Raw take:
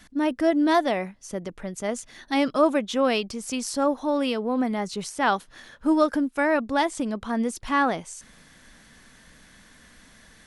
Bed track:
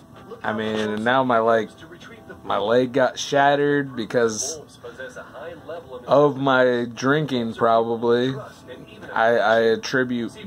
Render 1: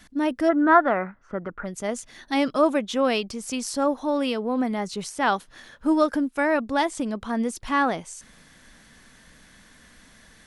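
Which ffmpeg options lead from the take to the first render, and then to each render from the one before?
-filter_complex "[0:a]asplit=3[s0][s1][s2];[s0]afade=t=out:st=0.48:d=0.02[s3];[s1]lowpass=f=1400:t=q:w=7.3,afade=t=in:st=0.48:d=0.02,afade=t=out:st=1.64:d=0.02[s4];[s2]afade=t=in:st=1.64:d=0.02[s5];[s3][s4][s5]amix=inputs=3:normalize=0"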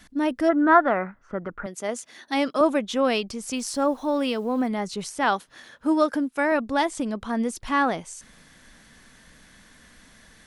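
-filter_complex "[0:a]asettb=1/sr,asplit=3[s0][s1][s2];[s0]atrim=end=1.664[s3];[s1]atrim=start=1.66:end=2.61,asetpts=PTS-STARTPTS,afade=t=in:d=0.004:c=qsin,afade=t=out:st=0.946:d=0.004:c=qsin,highpass=250[s4];[s2]atrim=start=2.606[s5];[s3][s4]acrossfade=d=0.004:c1=hsin:c2=qsin[s6];[s6][s5]acrossfade=d=0.004:c1=qsin:c2=hsin,asettb=1/sr,asplit=3[s7][s8][s9];[s7]atrim=end=3.564[s10];[s8]atrim=start=3.56:end=4.68,asetpts=PTS-STARTPTS,afade=t=in:d=0.004:c=qsin,afade=t=out:st=1.116:d=0.004:c=qsin,acrusher=bits=8:mix=0:aa=0.5[s11];[s9]atrim=start=4.676[s12];[s10][s11]acrossfade=d=0.004:c1=hsin:c2=qsin[s13];[s13][s12]acrossfade=d=0.004:c1=qsin:c2=hsin,asettb=1/sr,asplit=3[s14][s15][s16];[s14]atrim=end=5.244[s17];[s15]atrim=start=5.24:end=6.52,asetpts=PTS-STARTPTS,afade=t=in:d=0.004:c=qsin,afade=t=out:st=1.276:d=0.004:c=qsin,highpass=f=150:p=1[s18];[s16]atrim=start=6.516[s19];[s17][s18]acrossfade=d=0.004:c1=hsin:c2=qsin[s20];[s20][s19]acrossfade=d=0.004:c1=qsin:c2=hsin"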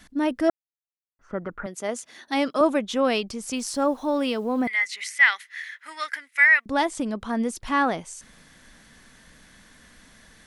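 -filter_complex "[0:a]asettb=1/sr,asplit=3[s0][s1][s2];[s0]atrim=end=4.674[s3];[s1]atrim=start=4.67:end=6.66,asetpts=PTS-STARTPTS,afade=t=in:d=0.004:c=qsin,afade=t=out:st=1.986:d=0.004:c=qsin,highpass=f=2000:t=q:w=13[s4];[s2]atrim=start=6.656[s5];[s3][s4]acrossfade=d=0.004:c1=hsin:c2=qsin[s6];[s6][s5]acrossfade=d=0.004:c1=qsin:c2=hsin,asplit=3[s7][s8][s9];[s7]atrim=end=0.5,asetpts=PTS-STARTPTS,afade=t=out:st=0.496:d=0.004:c=hsin[s10];[s8]atrim=start=0.5:end=1.19,asetpts=PTS-STARTPTS,volume=0[s11];[s9]atrim=start=1.19,asetpts=PTS-STARTPTS,afade=t=in:d=0.004:c=hsin[s12];[s10][s11][s12]concat=n=3:v=0:a=1"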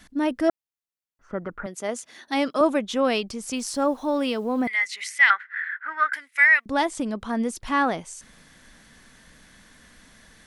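-filter_complex "[0:a]asettb=1/sr,asplit=3[s0][s1][s2];[s0]atrim=end=5.304[s3];[s1]atrim=start=5.3:end=6.13,asetpts=PTS-STARTPTS,afade=t=in:d=0.004:c=qsin,afade=t=out:st=0.826:d=0.004:c=qsin,lowpass=f=1500:t=q:w=8.8[s4];[s2]atrim=start=6.126[s5];[s3][s4]acrossfade=d=0.004:c1=hsin:c2=qsin[s6];[s6][s5]acrossfade=d=0.004:c1=qsin:c2=hsin"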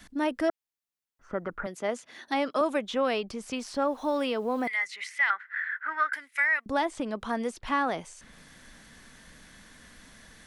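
-filter_complex "[0:a]acrossover=split=360|1600|4000[s0][s1][s2][s3];[s0]acompressor=threshold=0.0126:ratio=4[s4];[s1]acompressor=threshold=0.0562:ratio=4[s5];[s2]acompressor=threshold=0.0158:ratio=4[s6];[s3]acompressor=threshold=0.00282:ratio=4[s7];[s4][s5][s6][s7]amix=inputs=4:normalize=0"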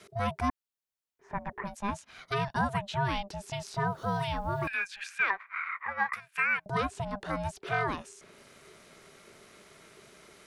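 -af "aeval=exprs='val(0)*sin(2*PI*400*n/s)':c=same"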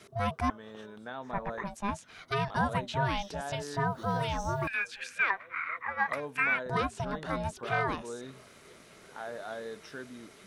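-filter_complex "[1:a]volume=0.075[s0];[0:a][s0]amix=inputs=2:normalize=0"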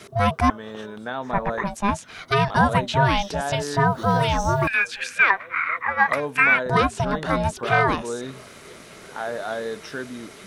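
-af "volume=3.55"

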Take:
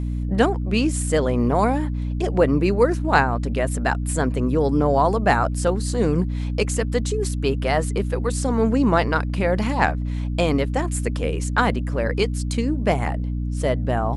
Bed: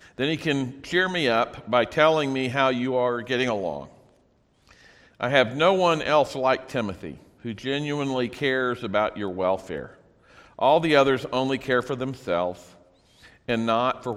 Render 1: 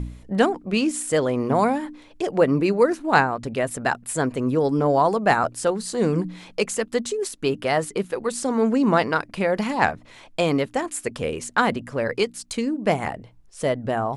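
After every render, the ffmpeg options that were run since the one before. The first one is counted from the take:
-af "bandreject=f=60:t=h:w=4,bandreject=f=120:t=h:w=4,bandreject=f=180:t=h:w=4,bandreject=f=240:t=h:w=4,bandreject=f=300:t=h:w=4"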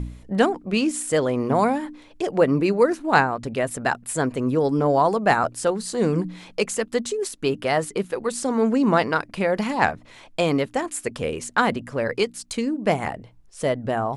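-af anull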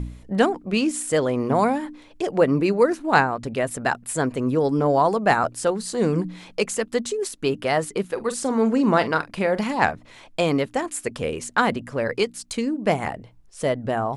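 -filter_complex "[0:a]asettb=1/sr,asplit=3[s0][s1][s2];[s0]atrim=end=8.134[s3];[s1]atrim=start=8.13:end=9.64,asetpts=PTS-STARTPTS,afade=t=in:d=0.004:c=qsin,afade=t=out:st=1.506:d=0.004:c=qsin,asplit=2[s4][s5];[s5]adelay=44,volume=0.2[s6];[s4][s6]amix=inputs=2:normalize=0,atrim=end_sample=66591[s7];[s2]atrim=start=9.636[s8];[s3][s7]acrossfade=d=0.004:c1=hsin:c2=qsin[s9];[s9][s8]acrossfade=d=0.004:c1=qsin:c2=hsin"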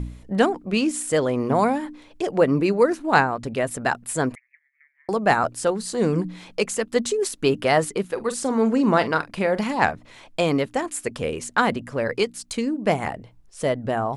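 -filter_complex "[0:a]asettb=1/sr,asplit=3[s0][s1][s2];[s0]atrim=end=4.354[s3];[s1]atrim=start=4.35:end=5.09,asetpts=PTS-STARTPTS,afade=t=in:d=0.004:c=qsin,afade=t=out:st=0.736:d=0.004:c=qsin,asuperpass=centerf=2000:order=8:qfactor=4[s4];[s2]atrim=start=5.086[s5];[s3][s4]acrossfade=d=0.004:c1=hsin:c2=qsin[s6];[s6][s5]acrossfade=d=0.004:c1=qsin:c2=hsin,asplit=3[s7][s8][s9];[s7]atrim=end=6.962[s10];[s8]atrim=start=6.958:end=7.922,asetpts=PTS-STARTPTS,volume=1.41[s11];[s9]atrim=start=7.918[s12];[s10][s11]acrossfade=d=0.004:c1=hsin:c2=hsin[s13];[s13][s12]acrossfade=d=0.004:c1=hsin:c2=hsin"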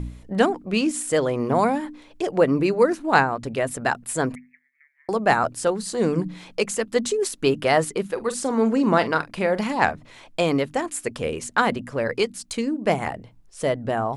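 -af "bandreject=f=50:t=h:w=6,bandreject=f=100:t=h:w=6,bandreject=f=150:t=h:w=6,bandreject=f=200:t=h:w=6,bandreject=f=250:t=h:w=6"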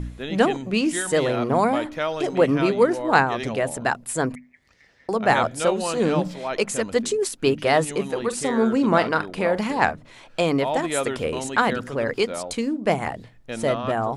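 -filter_complex "[1:a]volume=0.422[s0];[0:a][s0]amix=inputs=2:normalize=0"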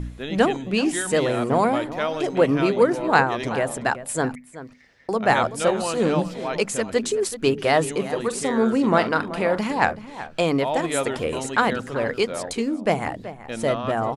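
-filter_complex "[0:a]asplit=2[s0][s1];[s1]adelay=379,volume=0.2,highshelf=f=4000:g=-8.53[s2];[s0][s2]amix=inputs=2:normalize=0"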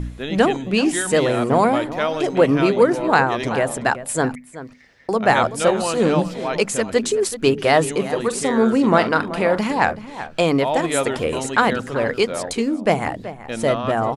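-af "volume=1.5,alimiter=limit=0.708:level=0:latency=1"

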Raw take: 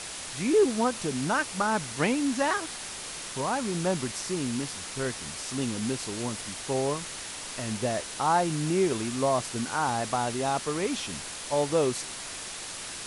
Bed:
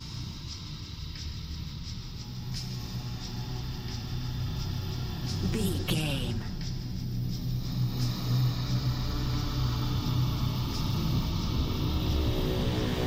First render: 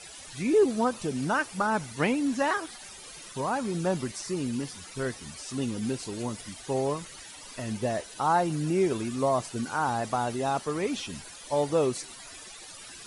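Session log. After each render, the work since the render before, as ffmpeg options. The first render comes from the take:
-af "afftdn=nr=14:nf=-39"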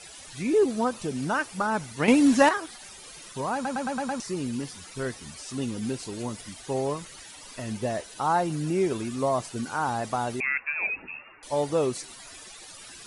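-filter_complex "[0:a]asettb=1/sr,asplit=3[s0][s1][s2];[s0]atrim=end=10.404[s3];[s1]atrim=start=10.4:end=11.43,asetpts=PTS-STARTPTS,afade=t=in:d=0.004:c=qsin,afade=t=out:st=1.026:d=0.004:c=qsin,lowpass=f=2400:t=q:w=0.5098,lowpass=f=2400:t=q:w=0.6013,lowpass=f=2400:t=q:w=0.9,lowpass=f=2400:t=q:w=2.563,afreqshift=-2800[s4];[s2]atrim=start=11.426[s5];[s3][s4]acrossfade=d=0.004:c1=hsin:c2=qsin[s6];[s6][s5]acrossfade=d=0.004:c1=qsin:c2=hsin,asplit=9[s7][s8][s9][s10][s11][s12][s13][s14][s15];[s7]atrim=end=2.082[s16];[s8]atrim=start=2.078:end=2.492,asetpts=PTS-STARTPTS,volume=2.66[s17];[s9]atrim=start=2.488:end=3.652[s18];[s10]atrim=start=3.538:end=3.652[s19];[s11]atrim=start=3.538:end=3.652[s20];[s12]atrim=start=3.538:end=3.652[s21];[s13]atrim=start=3.538:end=3.652[s22];[s14]atrim=start=3.538:end=3.652[s23];[s15]atrim=start=4.198[s24];[s16][s17]acrossfade=d=0.004:c1=hsin:c2=hsin[s25];[s25][s18]acrossfade=d=0.004:c1=hsin:c2=hsin[s26];[s26][s19]acrossfade=d=0.004:c1=hsin:c2=hsin[s27];[s27][s20]acrossfade=d=0.004:c1=hsin:c2=hsin[s28];[s28][s21]acrossfade=d=0.004:c1=hsin:c2=hsin[s29];[s29][s22]acrossfade=d=0.004:c1=hsin:c2=hsin[s30];[s30][s23]acrossfade=d=0.004:c1=hsin:c2=hsin[s31];[s31][s24]acrossfade=d=0.004:c1=hsin:c2=hsin"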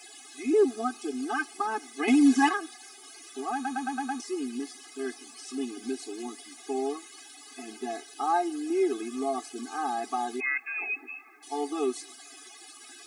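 -af "acrusher=bits=10:mix=0:aa=0.000001,afftfilt=real='re*eq(mod(floor(b*sr/1024/220),2),1)':imag='im*eq(mod(floor(b*sr/1024/220),2),1)':win_size=1024:overlap=0.75"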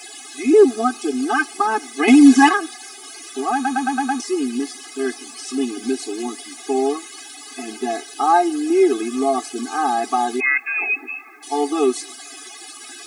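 -af "volume=3.55,alimiter=limit=0.891:level=0:latency=1"

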